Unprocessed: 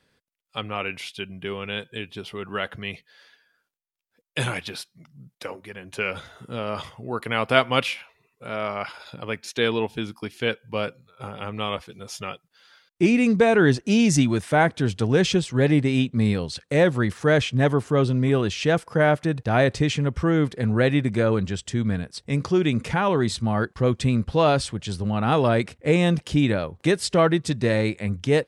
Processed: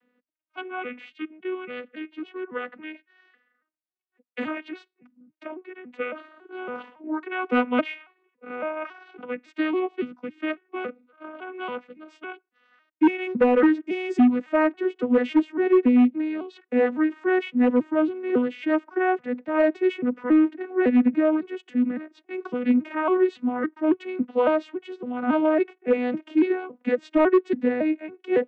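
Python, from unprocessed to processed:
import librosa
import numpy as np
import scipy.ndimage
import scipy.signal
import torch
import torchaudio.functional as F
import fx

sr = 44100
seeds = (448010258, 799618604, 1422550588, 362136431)

y = fx.vocoder_arp(x, sr, chord='major triad', root=59, every_ms=278)
y = np.clip(y, -10.0 ** (-12.5 / 20.0), 10.0 ** (-12.5 / 20.0))
y = fx.high_shelf_res(y, sr, hz=3600.0, db=-13.0, q=1.5)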